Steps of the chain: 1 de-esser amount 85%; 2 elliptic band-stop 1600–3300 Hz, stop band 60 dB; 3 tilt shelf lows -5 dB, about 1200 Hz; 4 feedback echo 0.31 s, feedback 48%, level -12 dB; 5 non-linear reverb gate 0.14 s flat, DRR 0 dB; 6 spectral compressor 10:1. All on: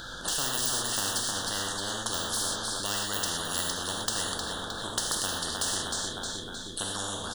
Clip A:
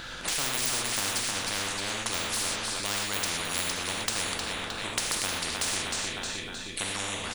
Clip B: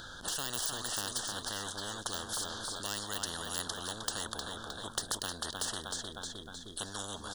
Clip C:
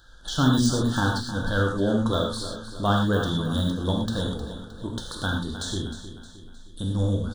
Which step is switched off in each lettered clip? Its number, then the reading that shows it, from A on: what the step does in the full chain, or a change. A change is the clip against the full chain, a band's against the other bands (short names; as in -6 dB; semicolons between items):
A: 2, 2 kHz band +4.5 dB; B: 5, momentary loudness spread change +1 LU; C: 6, 8 kHz band -16.5 dB